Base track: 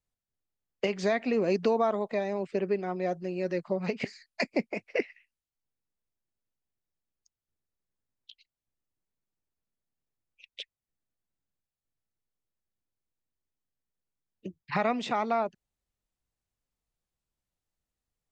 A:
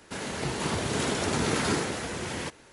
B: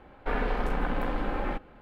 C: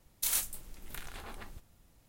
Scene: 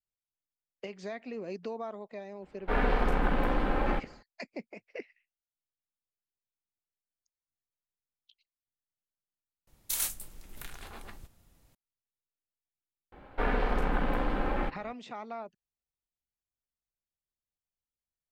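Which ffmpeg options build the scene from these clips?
ffmpeg -i bed.wav -i cue0.wav -i cue1.wav -i cue2.wav -filter_complex "[2:a]asplit=2[link_01][link_02];[0:a]volume=-12.5dB[link_03];[link_01]dynaudnorm=framelen=170:gausssize=3:maxgain=14dB[link_04];[link_03]asplit=2[link_05][link_06];[link_05]atrim=end=9.674[link_07];[3:a]atrim=end=2.08,asetpts=PTS-STARTPTS,volume=-0.5dB[link_08];[link_06]atrim=start=11.746[link_09];[link_04]atrim=end=1.81,asetpts=PTS-STARTPTS,volume=-11dB,afade=type=in:duration=0.004:curve=hsin,afade=type=out:start_time=1.806:duration=0.004:curve=hsin,adelay=2420[link_10];[link_02]atrim=end=1.81,asetpts=PTS-STARTPTS,afade=type=in:duration=0.004:curve=hsin,afade=type=out:start_time=1.806:duration=0.004:curve=hsin,adelay=13120[link_11];[link_07][link_08]acrossfade=duration=0.004:curve1=hsin:curve2=hsin[link_12];[link_12][link_09]acrossfade=duration=0.004:curve1=hsin:curve2=hsin[link_13];[link_13][link_10][link_11]amix=inputs=3:normalize=0" out.wav

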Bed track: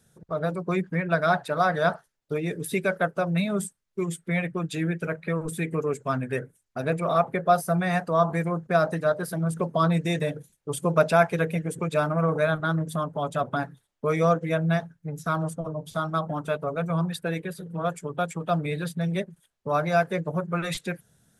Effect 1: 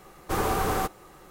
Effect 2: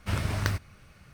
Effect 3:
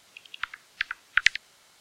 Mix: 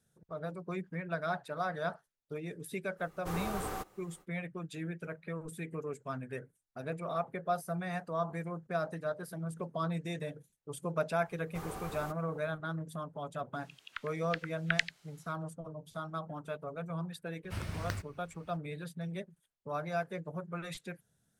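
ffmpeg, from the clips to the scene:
ffmpeg -i bed.wav -i cue0.wav -i cue1.wav -i cue2.wav -filter_complex "[1:a]asplit=2[link_01][link_02];[0:a]volume=-12.5dB[link_03];[link_01]acrusher=bits=10:mix=0:aa=0.000001,atrim=end=1.3,asetpts=PTS-STARTPTS,volume=-12dB,afade=type=in:duration=0.05,afade=type=out:start_time=1.25:duration=0.05,adelay=2960[link_04];[link_02]atrim=end=1.3,asetpts=PTS-STARTPTS,volume=-17.5dB,afade=type=in:duration=0.004:curve=hsin,afade=type=out:start_time=1.296:duration=0.004:curve=hsin,adelay=11250[link_05];[3:a]atrim=end=1.8,asetpts=PTS-STARTPTS,volume=-9.5dB,afade=type=in:duration=0.02,afade=type=out:start_time=1.78:duration=0.02,adelay=13530[link_06];[2:a]atrim=end=1.13,asetpts=PTS-STARTPTS,volume=-10dB,afade=type=in:duration=0.004:curve=hsin,afade=type=out:start_time=1.126:duration=0.004:curve=hsin,adelay=17440[link_07];[link_03][link_04][link_05][link_06][link_07]amix=inputs=5:normalize=0" out.wav

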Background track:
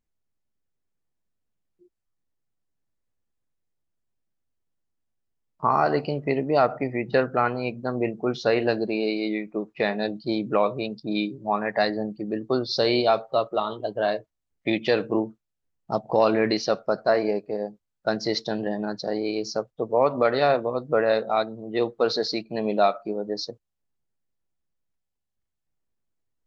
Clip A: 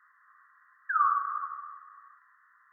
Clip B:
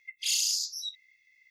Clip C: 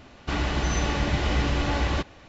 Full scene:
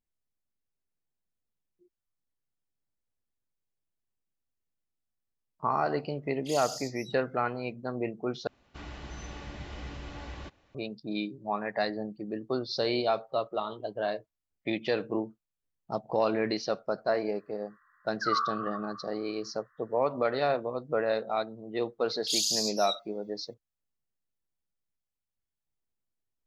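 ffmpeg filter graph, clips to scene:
ffmpeg -i bed.wav -i cue0.wav -i cue1.wav -i cue2.wav -filter_complex "[2:a]asplit=2[link_01][link_02];[0:a]volume=-7dB[link_03];[link_02]highshelf=frequency=2700:width_type=q:width=3:gain=11.5[link_04];[link_03]asplit=2[link_05][link_06];[link_05]atrim=end=8.474[link_07];[3:a]atrim=end=2.28,asetpts=PTS-STARTPTS,volume=-17dB[link_08];[link_06]atrim=start=10.746[link_09];[link_01]atrim=end=1.5,asetpts=PTS-STARTPTS,volume=-12dB,afade=type=in:duration=0.004:curve=hsin,afade=type=out:start_time=1.496:duration=0.004:curve=hsin,adelay=6230[link_10];[1:a]atrim=end=2.72,asetpts=PTS-STARTPTS,volume=-4dB,afade=type=in:duration=0.004:curve=hsin,afade=type=out:start_time=2.716:duration=0.004:curve=hsin,adelay=763812S[link_11];[link_04]atrim=end=1.5,asetpts=PTS-STARTPTS,volume=-16dB,afade=type=in:duration=0.004:curve=hsin,afade=type=out:start_time=1.496:duration=0.004:curve=hsin,adelay=22040[link_12];[link_07][link_08]acrossfade=duration=0.004:curve1=hsin:curve2=hsin[link_13];[link_13][link_09]acrossfade=duration=0.004:curve1=hsin:curve2=hsin[link_14];[link_14][link_10][link_11][link_12]amix=inputs=4:normalize=0" out.wav

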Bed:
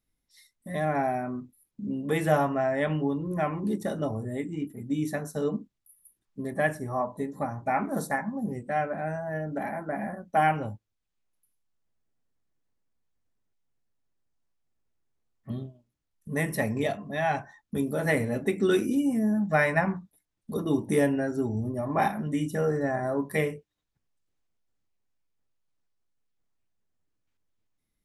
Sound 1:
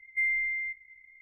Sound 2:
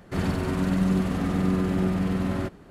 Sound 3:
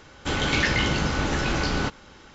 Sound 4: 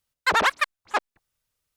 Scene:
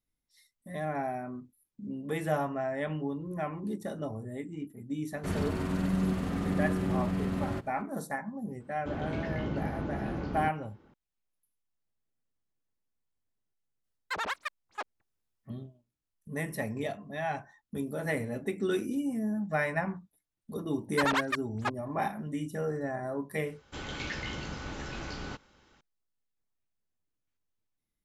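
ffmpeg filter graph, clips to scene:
ffmpeg -i bed.wav -i cue0.wav -i cue1.wav -i cue2.wav -i cue3.wav -filter_complex "[3:a]asplit=2[link_01][link_02];[4:a]asplit=2[link_03][link_04];[0:a]volume=-6.5dB[link_05];[link_01]bandpass=frequency=200:width_type=q:width=0.52:csg=0[link_06];[2:a]atrim=end=2.7,asetpts=PTS-STARTPTS,volume=-6dB,afade=type=in:duration=0.004:curve=hsin,afade=type=out:start_time=2.696:duration=0.004:curve=hsin,adelay=5120[link_07];[link_06]atrim=end=2.34,asetpts=PTS-STARTPTS,volume=-6.5dB,afade=type=in:duration=0.004:curve=hsin,afade=type=out:start_time=2.336:duration=0.004:curve=hsin,adelay=8600[link_08];[link_03]atrim=end=1.76,asetpts=PTS-STARTPTS,volume=-13.5dB,afade=type=in:duration=0.004:curve=hsin,afade=type=out:start_time=1.756:duration=0.004:curve=hsin,adelay=13840[link_09];[link_04]atrim=end=1.76,asetpts=PTS-STARTPTS,volume=-8.5dB,afade=type=in:duration=0.004:curve=hsin,afade=type=out:start_time=1.756:duration=0.004:curve=hsin,adelay=20710[link_10];[link_02]atrim=end=2.34,asetpts=PTS-STARTPTS,volume=-14.5dB,afade=type=in:duration=0.004:curve=hsin,afade=type=out:start_time=2.336:duration=0.004:curve=hsin,adelay=23470[link_11];[link_05][link_07][link_08][link_09][link_10][link_11]amix=inputs=6:normalize=0" out.wav

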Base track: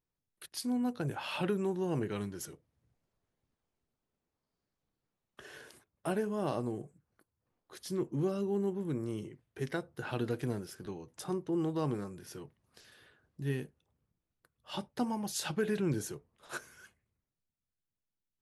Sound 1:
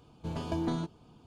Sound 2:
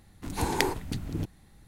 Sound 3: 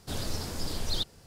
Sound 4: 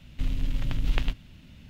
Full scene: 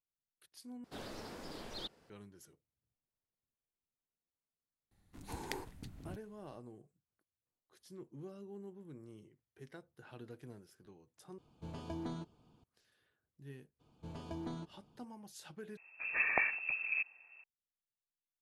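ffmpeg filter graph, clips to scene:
ffmpeg -i bed.wav -i cue0.wav -i cue1.wav -i cue2.wav -filter_complex "[2:a]asplit=2[link_01][link_02];[1:a]asplit=2[link_03][link_04];[0:a]volume=-16.5dB[link_05];[3:a]acrossover=split=190 3200:gain=0.158 1 0.251[link_06][link_07][link_08];[link_06][link_07][link_08]amix=inputs=3:normalize=0[link_09];[link_02]lowpass=frequency=2300:width_type=q:width=0.5098,lowpass=frequency=2300:width_type=q:width=0.6013,lowpass=frequency=2300:width_type=q:width=0.9,lowpass=frequency=2300:width_type=q:width=2.563,afreqshift=-2700[link_10];[link_05]asplit=4[link_11][link_12][link_13][link_14];[link_11]atrim=end=0.844[link_15];[link_09]atrim=end=1.26,asetpts=PTS-STARTPTS,volume=-7dB[link_16];[link_12]atrim=start=2.096:end=11.384[link_17];[link_03]atrim=end=1.26,asetpts=PTS-STARTPTS,volume=-10dB[link_18];[link_13]atrim=start=12.636:end=15.774[link_19];[link_10]atrim=end=1.67,asetpts=PTS-STARTPTS,volume=-4.5dB[link_20];[link_14]atrim=start=17.436[link_21];[link_01]atrim=end=1.67,asetpts=PTS-STARTPTS,volume=-16dB,afade=type=in:duration=0.004:curve=hsin,afade=type=out:start_time=1.666:duration=0.004:curve=hsin,adelay=4910[link_22];[link_04]atrim=end=1.26,asetpts=PTS-STARTPTS,volume=-11dB,afade=type=in:duration=0.02,afade=type=out:start_time=1.24:duration=0.02,adelay=13790[link_23];[link_15][link_16]acrossfade=duration=0.004:curve1=hsin:curve2=hsin[link_24];[link_24][link_17]acrossfade=duration=0.004:curve1=hsin:curve2=hsin[link_25];[link_25][link_18]acrossfade=duration=0.004:curve1=hsin:curve2=hsin[link_26];[link_26][link_19]acrossfade=duration=0.004:curve1=hsin:curve2=hsin[link_27];[link_27][link_20]acrossfade=duration=0.004:curve1=hsin:curve2=hsin[link_28];[link_28][link_21]acrossfade=duration=0.004:curve1=hsin:curve2=hsin[link_29];[link_29][link_22][link_23]amix=inputs=3:normalize=0" out.wav

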